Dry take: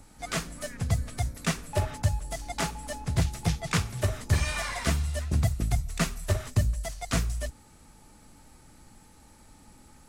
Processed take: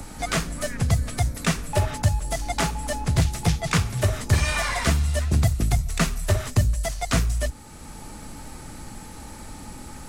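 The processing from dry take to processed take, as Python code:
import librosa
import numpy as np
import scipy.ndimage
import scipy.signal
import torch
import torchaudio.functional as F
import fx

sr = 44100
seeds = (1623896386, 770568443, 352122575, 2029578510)

p1 = 10.0 ** (-29.5 / 20.0) * np.tanh(x / 10.0 ** (-29.5 / 20.0))
p2 = x + (p1 * librosa.db_to_amplitude(-8.5))
p3 = fx.band_squash(p2, sr, depth_pct=40)
y = p3 * librosa.db_to_amplitude(4.5)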